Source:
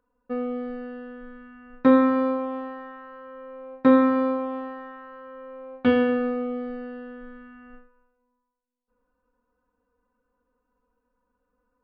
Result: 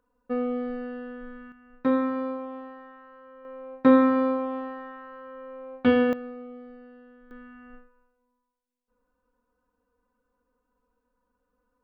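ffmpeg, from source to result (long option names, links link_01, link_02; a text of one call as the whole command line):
ffmpeg -i in.wav -af "asetnsamples=nb_out_samples=441:pad=0,asendcmd='1.52 volume volume -7dB;3.45 volume volume -0.5dB;6.13 volume volume -12.5dB;7.31 volume volume -1dB',volume=1dB" out.wav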